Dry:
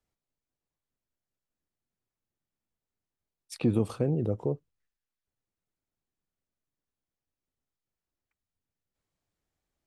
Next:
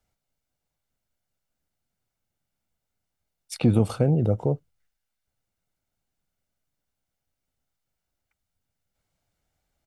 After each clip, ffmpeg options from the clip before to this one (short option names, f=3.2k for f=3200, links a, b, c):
-af "aecho=1:1:1.4:0.38,volume=6.5dB"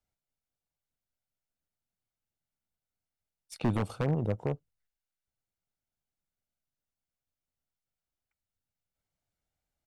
-af "aeval=exprs='0.237*(abs(mod(val(0)/0.237+3,4)-2)-1)':c=same,aeval=exprs='0.237*(cos(1*acos(clip(val(0)/0.237,-1,1)))-cos(1*PI/2))+0.0299*(cos(3*acos(clip(val(0)/0.237,-1,1)))-cos(3*PI/2))+0.00596*(cos(6*acos(clip(val(0)/0.237,-1,1)))-cos(6*PI/2))':c=same,volume=-6.5dB"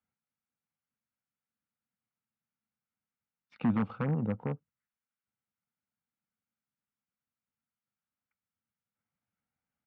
-af "highpass=120,equalizer=f=220:t=q:w=4:g=8,equalizer=f=370:t=q:w=4:g=-9,equalizer=f=640:t=q:w=4:g=-9,equalizer=f=1.3k:t=q:w=4:g=4,lowpass=f=2.6k:w=0.5412,lowpass=f=2.6k:w=1.3066,asoftclip=type=tanh:threshold=-18dB"